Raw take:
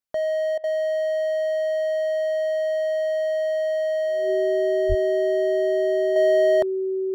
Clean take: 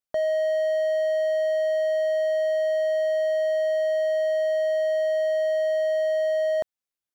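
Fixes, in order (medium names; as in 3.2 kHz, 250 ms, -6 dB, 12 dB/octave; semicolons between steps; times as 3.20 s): band-stop 380 Hz, Q 30; 4.88–5.00 s: high-pass 140 Hz 24 dB/octave; interpolate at 0.58 s, 57 ms; trim 0 dB, from 6.16 s -5.5 dB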